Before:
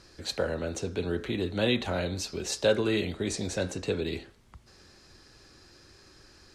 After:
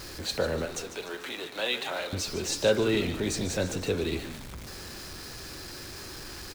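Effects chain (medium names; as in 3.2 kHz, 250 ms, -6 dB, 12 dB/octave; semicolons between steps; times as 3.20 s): jump at every zero crossing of -37.5 dBFS; 0.65–2.13 s: high-pass 670 Hz 12 dB/octave; frequency-shifting echo 148 ms, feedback 47%, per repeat -86 Hz, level -11.5 dB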